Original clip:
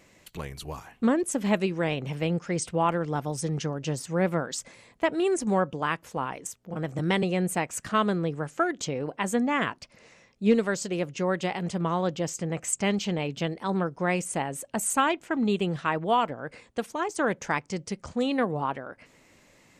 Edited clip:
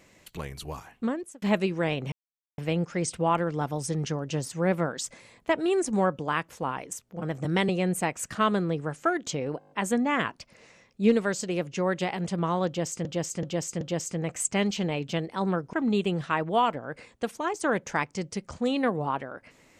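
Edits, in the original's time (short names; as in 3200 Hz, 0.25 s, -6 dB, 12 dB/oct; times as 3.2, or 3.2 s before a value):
0.77–1.42 fade out
2.12 insert silence 0.46 s
9.13 stutter 0.02 s, 7 plays
12.09–12.47 loop, 4 plays
14.01–15.28 cut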